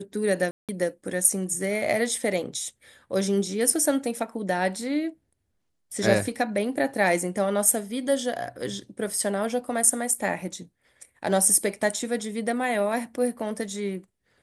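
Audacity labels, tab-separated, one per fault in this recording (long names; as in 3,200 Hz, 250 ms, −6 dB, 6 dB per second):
0.510000	0.690000	drop-out 177 ms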